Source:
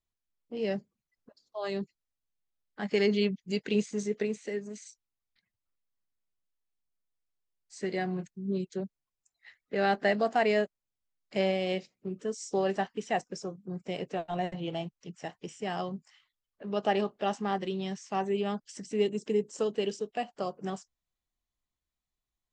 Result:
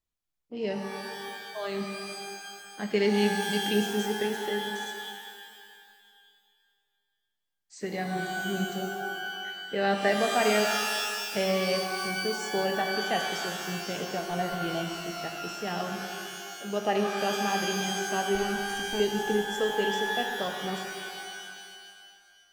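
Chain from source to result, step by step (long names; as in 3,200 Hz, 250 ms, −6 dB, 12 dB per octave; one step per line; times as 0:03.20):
0:18.35–0:19.00: lower of the sound and its delayed copy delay 0.69 ms
reverb with rising layers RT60 2.1 s, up +12 semitones, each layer −2 dB, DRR 4 dB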